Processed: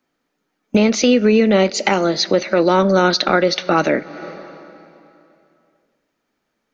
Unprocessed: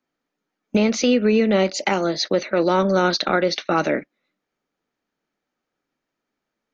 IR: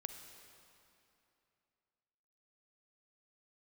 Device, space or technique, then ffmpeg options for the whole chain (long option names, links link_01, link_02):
ducked reverb: -filter_complex "[0:a]asplit=3[link_01][link_02][link_03];[1:a]atrim=start_sample=2205[link_04];[link_02][link_04]afir=irnorm=-1:irlink=0[link_05];[link_03]apad=whole_len=296922[link_06];[link_05][link_06]sidechaincompress=threshold=-31dB:ratio=6:attack=21:release=265,volume=1dB[link_07];[link_01][link_07]amix=inputs=2:normalize=0,volume=3dB"